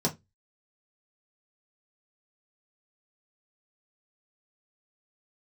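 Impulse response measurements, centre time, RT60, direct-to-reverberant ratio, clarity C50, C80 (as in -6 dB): 11 ms, 0.20 s, -3.0 dB, 18.0 dB, 28.0 dB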